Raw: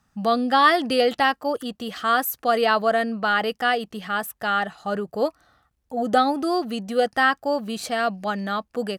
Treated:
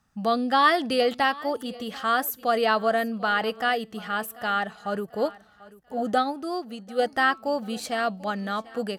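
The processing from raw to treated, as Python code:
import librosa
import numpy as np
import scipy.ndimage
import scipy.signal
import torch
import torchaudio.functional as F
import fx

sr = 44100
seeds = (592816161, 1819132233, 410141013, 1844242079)

y = fx.comb_fb(x, sr, f0_hz=220.0, decay_s=0.41, harmonics='all', damping=0.0, mix_pct=30)
y = fx.echo_feedback(y, sr, ms=740, feedback_pct=35, wet_db=-20.5)
y = fx.upward_expand(y, sr, threshold_db=-31.0, expansion=1.5, at=(6.12, 6.98), fade=0.02)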